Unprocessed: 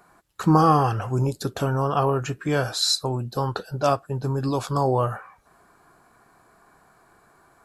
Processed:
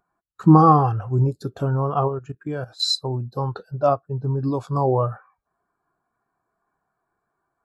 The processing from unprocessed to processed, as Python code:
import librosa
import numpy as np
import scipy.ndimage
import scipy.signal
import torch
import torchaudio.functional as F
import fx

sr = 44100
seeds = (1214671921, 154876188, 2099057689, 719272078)

y = fx.level_steps(x, sr, step_db=13, at=(2.07, 2.79), fade=0.02)
y = fx.high_shelf(y, sr, hz=4700.0, db=-7.0, at=(3.72, 4.4))
y = fx.spectral_expand(y, sr, expansion=1.5)
y = y * 10.0 ** (3.0 / 20.0)